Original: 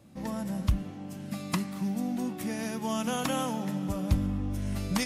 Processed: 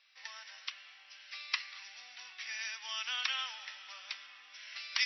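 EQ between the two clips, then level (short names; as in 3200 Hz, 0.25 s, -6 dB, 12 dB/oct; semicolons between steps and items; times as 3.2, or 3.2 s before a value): ladder high-pass 1600 Hz, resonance 25%; brick-wall FIR low-pass 5900 Hz; +9.0 dB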